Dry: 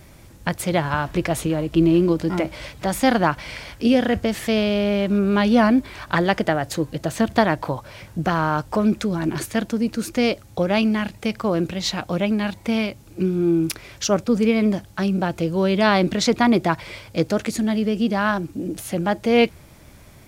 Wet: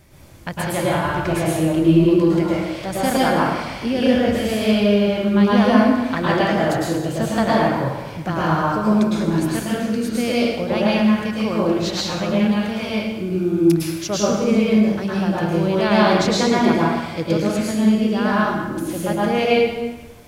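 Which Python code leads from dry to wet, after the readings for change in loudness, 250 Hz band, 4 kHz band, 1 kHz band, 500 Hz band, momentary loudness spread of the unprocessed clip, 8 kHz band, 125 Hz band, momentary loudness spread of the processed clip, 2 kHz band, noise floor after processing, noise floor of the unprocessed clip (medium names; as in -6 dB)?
+2.5 dB, +3.0 dB, +2.0 dB, +2.5 dB, +2.5 dB, 9 LU, +1.5 dB, +3.0 dB, 8 LU, +1.0 dB, -32 dBFS, -46 dBFS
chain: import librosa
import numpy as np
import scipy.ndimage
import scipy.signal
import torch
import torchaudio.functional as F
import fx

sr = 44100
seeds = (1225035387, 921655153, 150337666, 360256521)

y = fx.rev_plate(x, sr, seeds[0], rt60_s=1.2, hf_ratio=0.8, predelay_ms=95, drr_db=-6.5)
y = y * 10.0 ** (-5.5 / 20.0)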